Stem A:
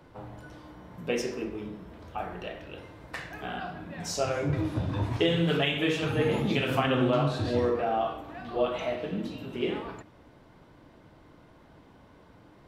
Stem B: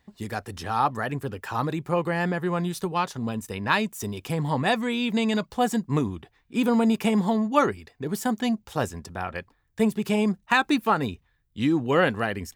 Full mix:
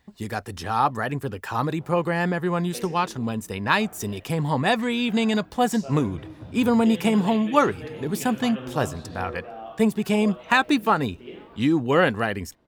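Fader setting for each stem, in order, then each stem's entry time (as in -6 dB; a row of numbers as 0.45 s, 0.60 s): -10.5 dB, +2.0 dB; 1.65 s, 0.00 s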